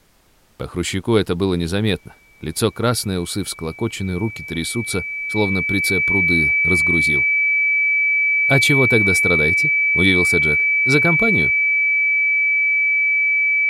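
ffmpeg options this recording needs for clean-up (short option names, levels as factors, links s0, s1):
-af "bandreject=f=2300:w=30,agate=range=0.0891:threshold=0.0355"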